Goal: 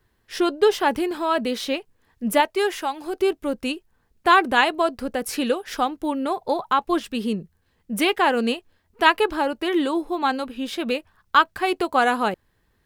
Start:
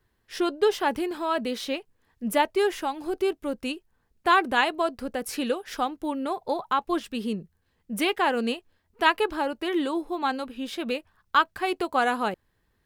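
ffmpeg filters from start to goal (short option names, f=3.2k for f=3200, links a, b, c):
-filter_complex "[0:a]asettb=1/sr,asplit=3[a][b][c];[a]atrim=end=2.404[d];[b]atrim=start=2.4:end=3.2,asetpts=PTS-STARTPTS,afade=t=in:d=0.004:c=qsin,afade=t=out:st=0.796:d=0.004:c=qsin,lowshelf=f=340:g=-9[e];[c]atrim=start=3.196[f];[d][e]acrossfade=d=0.004:c1=hsin:c2=qsin[g];[g][f]acrossfade=d=0.004:c1=qsin:c2=hsin,volume=4.5dB"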